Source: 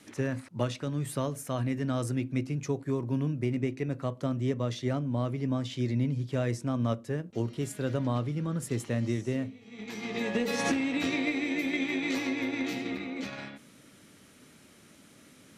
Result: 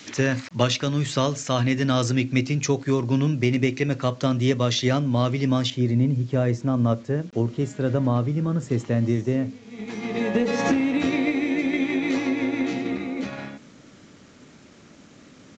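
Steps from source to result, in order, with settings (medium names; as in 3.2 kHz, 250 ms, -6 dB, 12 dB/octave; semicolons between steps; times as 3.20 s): peaking EQ 4.4 kHz +9.5 dB 2.7 oct, from 5.70 s -7.5 dB; word length cut 10-bit, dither none; resampled via 16 kHz; trim +8 dB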